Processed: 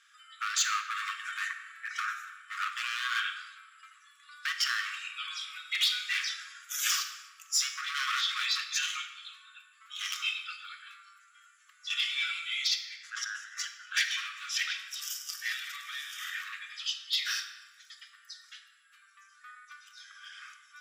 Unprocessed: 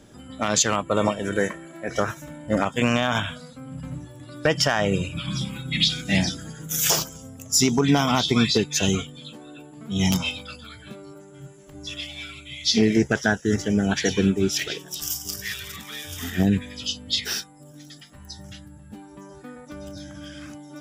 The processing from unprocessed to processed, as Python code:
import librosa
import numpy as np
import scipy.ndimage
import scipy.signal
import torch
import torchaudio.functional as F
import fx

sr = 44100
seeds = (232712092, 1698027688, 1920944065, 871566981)

y = fx.lowpass(x, sr, hz=2500.0, slope=6)
y = fx.over_compress(y, sr, threshold_db=-31.0, ratio=-1.0, at=(11.9, 14.18))
y = np.clip(10.0 ** (20.5 / 20.0) * y, -1.0, 1.0) / 10.0 ** (20.5 / 20.0)
y = fx.brickwall_highpass(y, sr, low_hz=1100.0)
y = fx.room_shoebox(y, sr, seeds[0], volume_m3=1200.0, walls='mixed', distance_m=0.95)